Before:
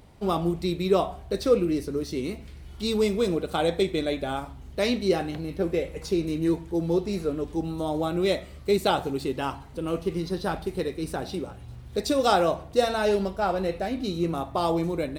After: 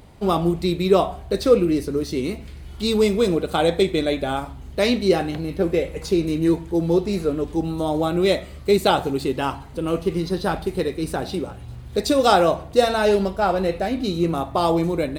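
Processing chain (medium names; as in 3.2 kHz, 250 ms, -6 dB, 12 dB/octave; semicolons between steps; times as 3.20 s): band-stop 5.6 kHz, Q 19; trim +5.5 dB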